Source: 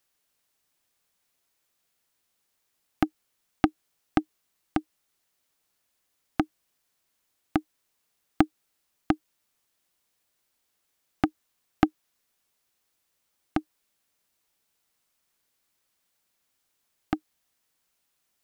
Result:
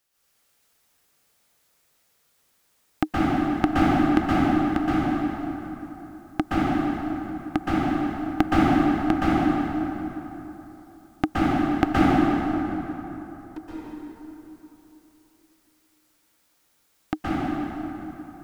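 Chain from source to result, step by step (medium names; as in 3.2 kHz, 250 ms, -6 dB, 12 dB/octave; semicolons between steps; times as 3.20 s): 11.84–13.58 s: valve stage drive 35 dB, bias 0.5; plate-style reverb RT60 3.4 s, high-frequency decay 0.6×, pre-delay 110 ms, DRR -10 dB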